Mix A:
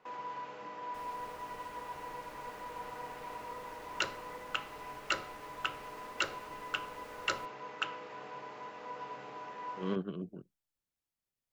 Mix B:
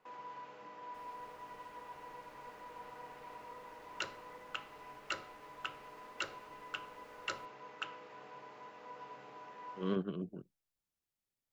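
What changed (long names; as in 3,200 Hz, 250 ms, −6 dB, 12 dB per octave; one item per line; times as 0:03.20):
first sound −6.5 dB
second sound −10.5 dB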